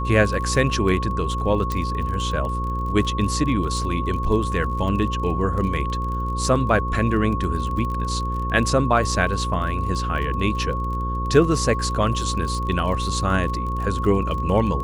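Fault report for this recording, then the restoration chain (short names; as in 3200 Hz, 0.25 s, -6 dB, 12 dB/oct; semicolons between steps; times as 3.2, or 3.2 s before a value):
buzz 60 Hz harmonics 9 -26 dBFS
crackle 35/s -29 dBFS
tone 1100 Hz -27 dBFS
1.72 pop -12 dBFS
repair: de-click; notch 1100 Hz, Q 30; de-hum 60 Hz, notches 9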